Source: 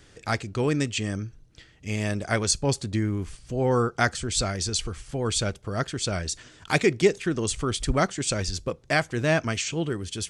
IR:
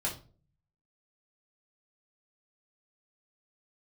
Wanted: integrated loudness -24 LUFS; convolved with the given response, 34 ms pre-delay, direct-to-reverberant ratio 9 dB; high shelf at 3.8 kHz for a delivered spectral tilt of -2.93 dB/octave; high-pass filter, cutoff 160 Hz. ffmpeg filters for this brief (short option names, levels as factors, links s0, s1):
-filter_complex "[0:a]highpass=160,highshelf=f=3800:g=5.5,asplit=2[s0][s1];[1:a]atrim=start_sample=2205,adelay=34[s2];[s1][s2]afir=irnorm=-1:irlink=0,volume=0.211[s3];[s0][s3]amix=inputs=2:normalize=0,volume=1.12"